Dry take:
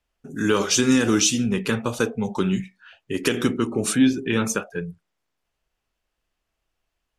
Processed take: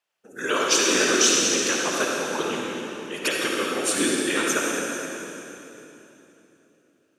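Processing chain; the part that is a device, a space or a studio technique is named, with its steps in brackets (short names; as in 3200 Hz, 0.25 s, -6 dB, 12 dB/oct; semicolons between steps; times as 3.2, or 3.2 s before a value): whispering ghost (whisperiser; HPF 550 Hz 12 dB/oct; reverb RT60 3.3 s, pre-delay 50 ms, DRR -2.5 dB)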